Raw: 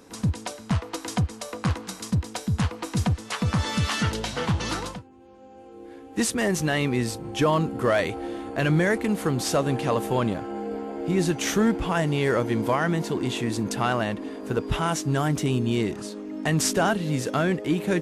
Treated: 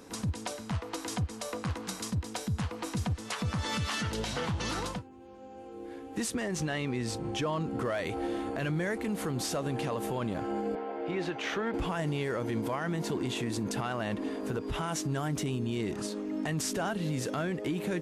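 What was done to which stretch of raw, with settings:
6.32–7.85 LPF 8500 Hz
10.75–11.74 three-band isolator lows -14 dB, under 390 Hz, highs -24 dB, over 3800 Hz
whole clip: compressor, threshold -26 dBFS; limiter -24 dBFS

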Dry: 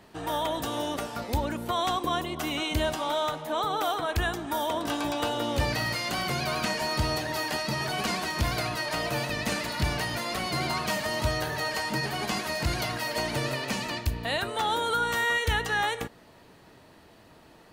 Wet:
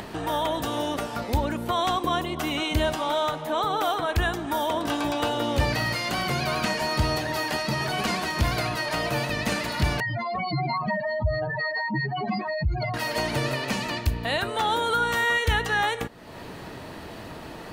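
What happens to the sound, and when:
10–12.94 spectral contrast raised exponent 3.4
whole clip: tone controls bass +1 dB, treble -3 dB; upward compressor, threshold -30 dBFS; gain +3 dB

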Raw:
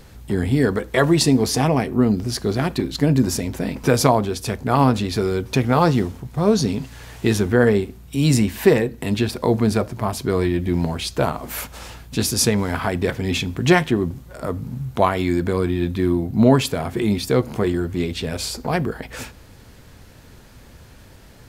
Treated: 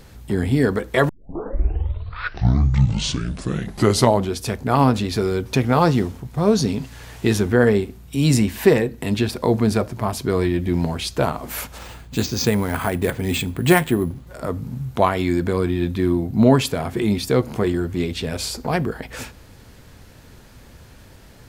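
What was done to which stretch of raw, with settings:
1.09 tape start 3.32 s
11.78–14.27 careless resampling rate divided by 4×, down filtered, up hold

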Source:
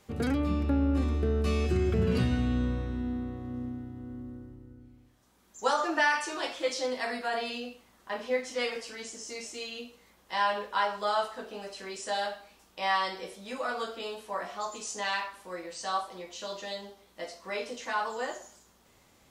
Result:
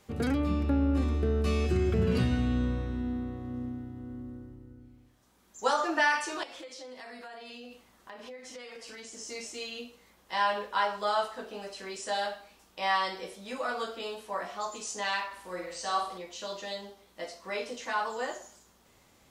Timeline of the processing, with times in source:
6.43–9.18 compressor 16:1, threshold -41 dBFS
15.26–16.18 flutter echo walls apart 8.6 m, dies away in 0.5 s

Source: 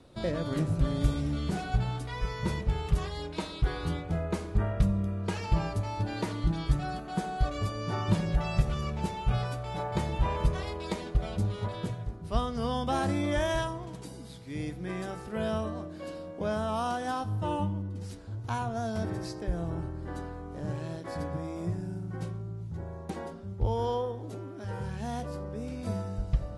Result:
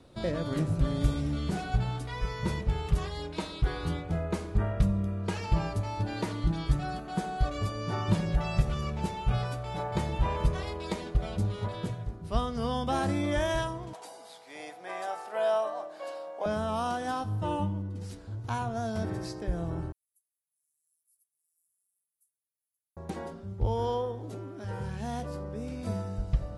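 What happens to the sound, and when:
13.93–16.46 resonant high-pass 720 Hz, resonance Q 3.2
19.92–22.97 inverse Chebyshev high-pass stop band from 2500 Hz, stop band 80 dB

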